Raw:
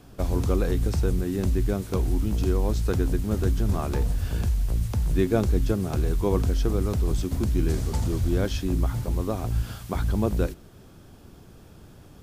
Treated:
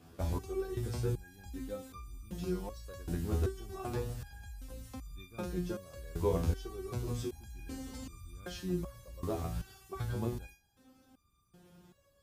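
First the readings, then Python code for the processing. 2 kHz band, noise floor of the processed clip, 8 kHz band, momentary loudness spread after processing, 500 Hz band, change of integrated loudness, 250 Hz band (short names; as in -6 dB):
-11.5 dB, -71 dBFS, -10.5 dB, 14 LU, -10.5 dB, -13.0 dB, -12.5 dB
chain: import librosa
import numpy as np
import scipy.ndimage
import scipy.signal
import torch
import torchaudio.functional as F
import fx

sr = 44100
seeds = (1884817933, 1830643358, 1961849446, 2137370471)

y = scipy.signal.sosfilt(scipy.signal.butter(2, 47.0, 'highpass', fs=sr, output='sos'), x)
y = fx.resonator_held(y, sr, hz=2.6, low_hz=83.0, high_hz=1200.0)
y = y * 10.0 ** (2.5 / 20.0)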